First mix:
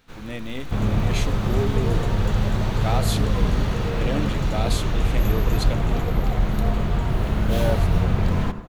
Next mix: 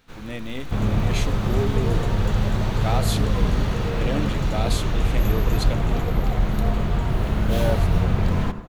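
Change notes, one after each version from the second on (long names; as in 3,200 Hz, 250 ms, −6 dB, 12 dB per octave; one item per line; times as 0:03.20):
nothing changed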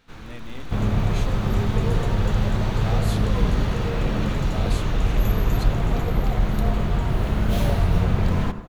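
speech −8.0 dB
first sound: add high-shelf EQ 8,700 Hz −7 dB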